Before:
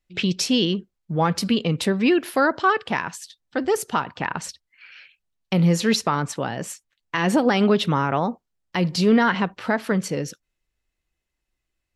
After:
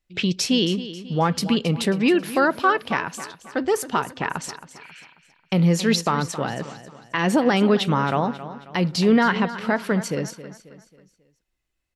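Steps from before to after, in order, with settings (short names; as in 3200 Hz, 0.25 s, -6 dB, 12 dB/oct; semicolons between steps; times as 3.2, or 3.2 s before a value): 6.52–7.19 LPF 4600 Hz 24 dB/oct; on a send: feedback echo 0.27 s, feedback 42%, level -14 dB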